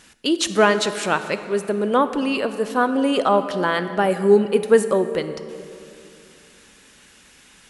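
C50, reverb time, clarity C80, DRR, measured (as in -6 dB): 11.0 dB, 2.7 s, 11.5 dB, 10.5 dB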